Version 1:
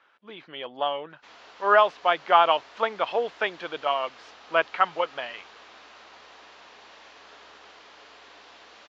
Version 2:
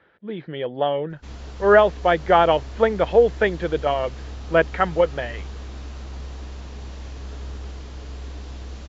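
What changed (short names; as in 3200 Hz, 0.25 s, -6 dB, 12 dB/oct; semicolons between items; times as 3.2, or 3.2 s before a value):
speech: add speaker cabinet 210–3700 Hz, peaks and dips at 260 Hz -8 dB, 490 Hz +4 dB, 1100 Hz -6 dB, 1800 Hz +7 dB, 2700 Hz -5 dB; master: remove BPF 800–4000 Hz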